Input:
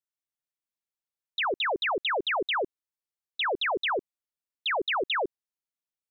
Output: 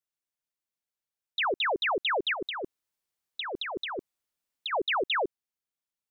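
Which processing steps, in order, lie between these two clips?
2.33–4.73 negative-ratio compressor -32 dBFS, ratio -0.5

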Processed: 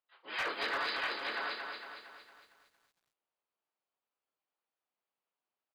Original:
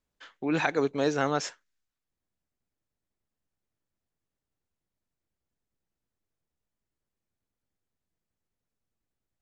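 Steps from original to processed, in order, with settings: Wiener smoothing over 25 samples; plain phase-vocoder stretch 0.61×; HPF 1400 Hz 12 dB/oct; on a send: echo 0.64 s -16 dB; on the sum: AGC gain up to 8 dB; early reflections 26 ms -8 dB, 59 ms -10 dB; reverse; compressor 5:1, threshold -44 dBFS, peak gain reduction 15.5 dB; reverse; harmoniser -5 st -5 dB, -3 st -16 dB, +4 st -2 dB; brick-wall FIR low-pass 5000 Hz; hard clip -36.5 dBFS, distortion -19 dB; lo-fi delay 0.229 s, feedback 55%, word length 13-bit, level -5 dB; gain +8 dB

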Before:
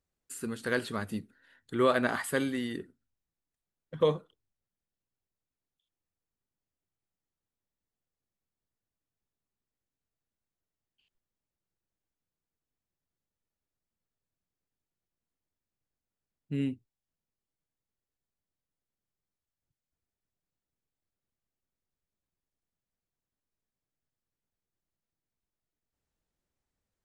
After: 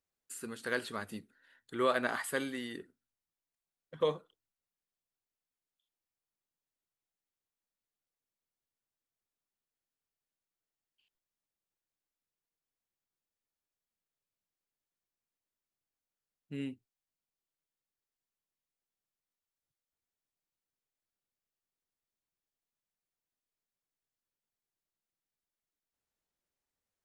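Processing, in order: low shelf 260 Hz -10.5 dB; gain -2.5 dB

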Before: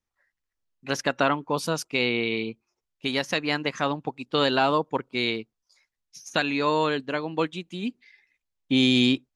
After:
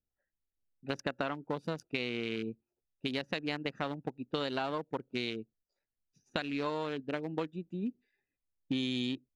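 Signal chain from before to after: Wiener smoothing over 41 samples; compressor, threshold -29 dBFS, peak gain reduction 11.5 dB; gain -2 dB

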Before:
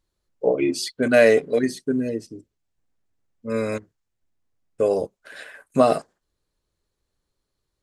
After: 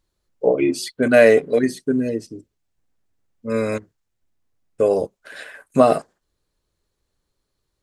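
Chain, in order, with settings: dynamic EQ 5100 Hz, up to -5 dB, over -40 dBFS, Q 0.99; gain +3 dB

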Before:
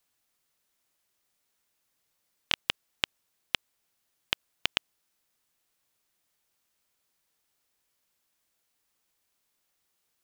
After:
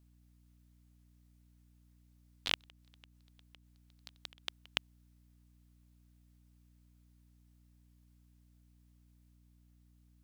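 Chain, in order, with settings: 2.65–4.66 auto swell 0.123 s; echoes that change speed 0.233 s, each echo +2 st, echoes 3, each echo -6 dB; hum 60 Hz, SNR 14 dB; gain -5.5 dB

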